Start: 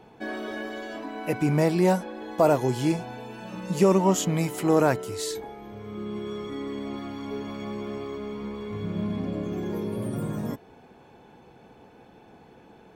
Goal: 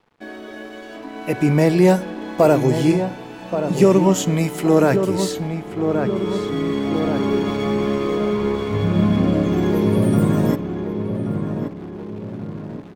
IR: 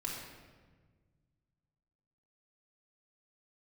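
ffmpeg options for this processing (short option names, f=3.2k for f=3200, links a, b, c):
-filter_complex "[0:a]acrossover=split=770|1200[a][b][c];[b]acompressor=threshold=-51dB:ratio=6[d];[a][d][c]amix=inputs=3:normalize=0,bass=f=250:g=0,treble=f=4k:g=-3,asplit=2[e][f];[1:a]atrim=start_sample=2205,afade=t=out:st=0.45:d=0.01,atrim=end_sample=20286[g];[f][g]afir=irnorm=-1:irlink=0,volume=-18.5dB[h];[e][h]amix=inputs=2:normalize=0,aeval=exprs='sgn(val(0))*max(abs(val(0))-0.00355,0)':c=same,asplit=2[i][j];[j]adelay=1128,lowpass=f=1.7k:p=1,volume=-7dB,asplit=2[k][l];[l]adelay=1128,lowpass=f=1.7k:p=1,volume=0.41,asplit=2[m][n];[n]adelay=1128,lowpass=f=1.7k:p=1,volume=0.41,asplit=2[o][p];[p]adelay=1128,lowpass=f=1.7k:p=1,volume=0.41,asplit=2[q][r];[r]adelay=1128,lowpass=f=1.7k:p=1,volume=0.41[s];[i][k][m][o][q][s]amix=inputs=6:normalize=0,dynaudnorm=f=480:g=5:m=15dB,volume=-1dB"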